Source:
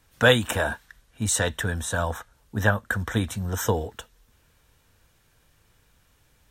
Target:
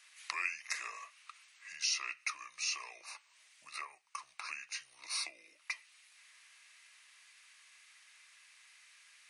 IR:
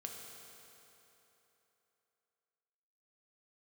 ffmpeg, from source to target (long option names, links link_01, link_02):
-af "acompressor=threshold=-39dB:ratio=4,asetrate=30870,aresample=44100,highpass=frequency=2100:width_type=q:width=2,volume=4dB"